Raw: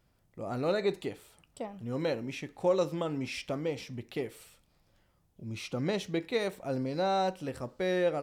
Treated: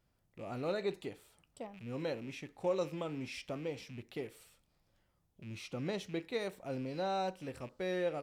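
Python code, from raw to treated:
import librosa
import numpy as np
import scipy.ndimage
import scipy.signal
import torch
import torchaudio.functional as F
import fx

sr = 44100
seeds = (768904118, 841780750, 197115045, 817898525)

y = fx.rattle_buzz(x, sr, strikes_db=-47.0, level_db=-40.0)
y = F.gain(torch.from_numpy(y), -6.5).numpy()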